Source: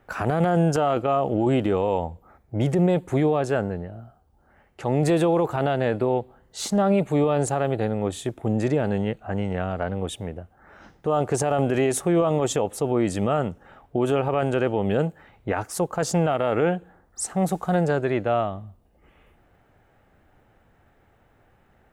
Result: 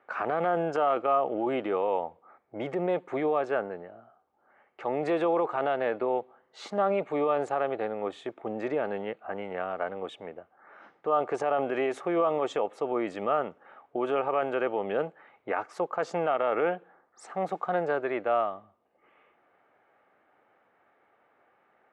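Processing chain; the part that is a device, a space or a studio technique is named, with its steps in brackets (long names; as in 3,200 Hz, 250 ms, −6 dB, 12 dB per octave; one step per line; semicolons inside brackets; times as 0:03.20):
tin-can telephone (band-pass filter 420–2,500 Hz; hollow resonant body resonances 1,200/2,200 Hz, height 6 dB, ringing for 25 ms)
level −2.5 dB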